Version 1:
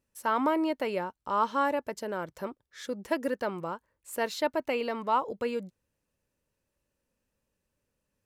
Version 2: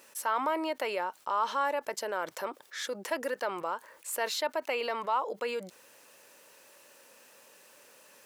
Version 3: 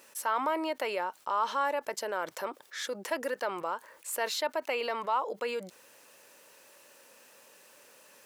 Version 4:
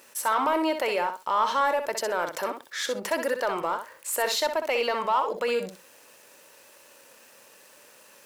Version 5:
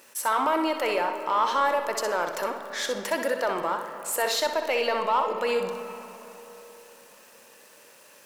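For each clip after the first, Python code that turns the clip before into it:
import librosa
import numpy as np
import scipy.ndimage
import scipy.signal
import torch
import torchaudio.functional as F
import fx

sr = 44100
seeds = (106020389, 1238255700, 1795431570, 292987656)

y1 = scipy.signal.sosfilt(scipy.signal.butter(2, 570.0, 'highpass', fs=sr, output='sos'), x)
y1 = fx.env_flatten(y1, sr, amount_pct=50)
y1 = y1 * librosa.db_to_amplitude(-3.0)
y2 = y1
y3 = fx.leveller(y2, sr, passes=1)
y3 = fx.echo_feedback(y3, sr, ms=63, feedback_pct=15, wet_db=-8.0)
y3 = y3 * librosa.db_to_amplitude(2.5)
y4 = fx.rev_freeverb(y3, sr, rt60_s=3.8, hf_ratio=0.5, predelay_ms=15, drr_db=8.5)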